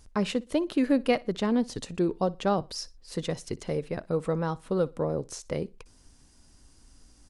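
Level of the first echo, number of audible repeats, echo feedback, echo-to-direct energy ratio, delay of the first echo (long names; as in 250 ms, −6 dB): −22.5 dB, 2, 26%, −22.0 dB, 60 ms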